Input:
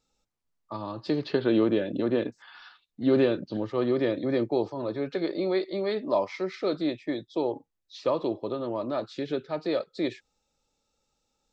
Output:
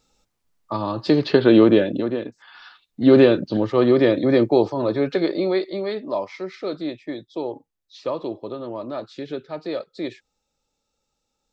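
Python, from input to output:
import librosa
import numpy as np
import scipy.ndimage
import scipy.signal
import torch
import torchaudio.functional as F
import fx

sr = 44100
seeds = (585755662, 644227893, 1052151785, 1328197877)

y = fx.gain(x, sr, db=fx.line((1.8, 10.0), (2.2, -1.0), (3.02, 9.5), (5.05, 9.5), (6.13, 0.0)))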